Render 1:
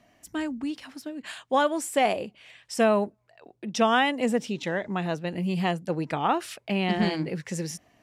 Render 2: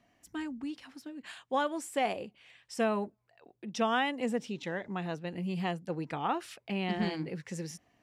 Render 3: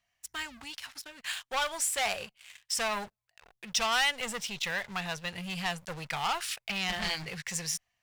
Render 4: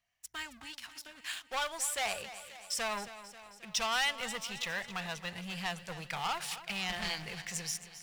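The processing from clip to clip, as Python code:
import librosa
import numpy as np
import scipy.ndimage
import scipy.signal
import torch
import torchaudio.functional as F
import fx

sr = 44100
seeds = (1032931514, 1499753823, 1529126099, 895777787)

y1 = fx.high_shelf(x, sr, hz=7500.0, db=-4.5)
y1 = fx.notch(y1, sr, hz=620.0, q=12.0)
y1 = y1 * 10.0 ** (-7.0 / 20.0)
y2 = fx.leveller(y1, sr, passes=3)
y2 = fx.tone_stack(y2, sr, knobs='10-0-10')
y2 = y2 * 10.0 ** (4.0 / 20.0)
y3 = fx.echo_feedback(y2, sr, ms=269, feedback_pct=60, wet_db=-14)
y3 = y3 * 10.0 ** (-4.0 / 20.0)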